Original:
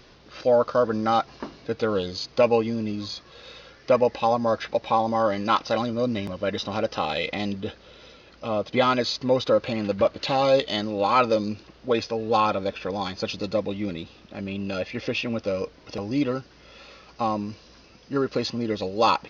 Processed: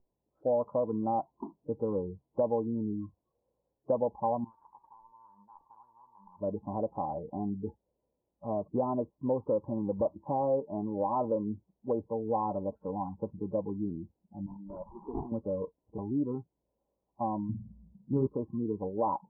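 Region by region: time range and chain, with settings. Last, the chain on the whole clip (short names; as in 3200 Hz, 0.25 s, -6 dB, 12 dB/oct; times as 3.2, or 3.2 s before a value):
4.44–6.4 resonator 380 Hz, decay 0.34 s + spectral compressor 10:1
14.46–15.32 HPF 630 Hz 6 dB/oct + sample-rate reducer 2900 Hz, jitter 20%
17.49–18.27 bell 140 Hz +11 dB 2 oct + flutter echo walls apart 9 m, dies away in 0.5 s
whole clip: spectral noise reduction 26 dB; Chebyshev low-pass 990 Hz, order 6; compressor 2:1, threshold -24 dBFS; gain -4 dB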